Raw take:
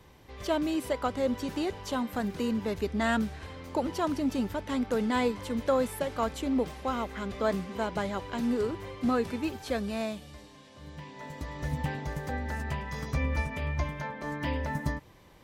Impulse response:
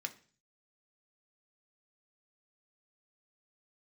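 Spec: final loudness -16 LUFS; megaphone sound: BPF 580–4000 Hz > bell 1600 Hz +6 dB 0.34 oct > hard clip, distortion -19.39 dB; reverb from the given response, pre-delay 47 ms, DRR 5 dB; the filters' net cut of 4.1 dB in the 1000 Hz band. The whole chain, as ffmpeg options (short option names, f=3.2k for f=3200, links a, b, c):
-filter_complex "[0:a]equalizer=f=1k:t=o:g=-5,asplit=2[a][b];[1:a]atrim=start_sample=2205,adelay=47[c];[b][c]afir=irnorm=-1:irlink=0,volume=-4.5dB[d];[a][d]amix=inputs=2:normalize=0,highpass=580,lowpass=4k,equalizer=f=1.6k:t=o:w=0.34:g=6,asoftclip=type=hard:threshold=-24.5dB,volume=21dB"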